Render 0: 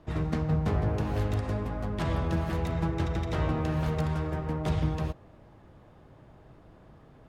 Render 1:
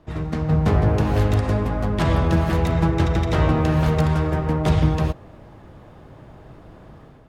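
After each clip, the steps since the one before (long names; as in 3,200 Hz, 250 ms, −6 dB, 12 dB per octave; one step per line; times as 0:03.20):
automatic gain control gain up to 8 dB
level +2 dB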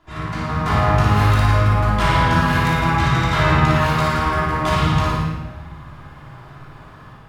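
low shelf with overshoot 740 Hz −10 dB, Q 1.5
on a send: flutter between parallel walls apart 9.7 metres, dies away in 0.76 s
on the sum: rectangular room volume 750 cubic metres, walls mixed, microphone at 3.1 metres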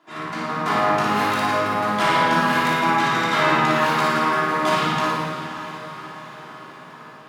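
high-pass filter 210 Hz 24 dB per octave
feedback delay with all-pass diffusion 581 ms, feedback 54%, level −12 dB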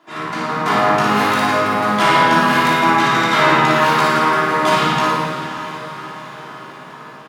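double-tracking delay 15 ms −11.5 dB
level +5 dB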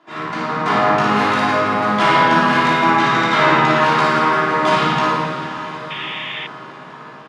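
sound drawn into the spectrogram noise, 0:05.90–0:06.47, 1,700–3,700 Hz −27 dBFS
high-frequency loss of the air 76 metres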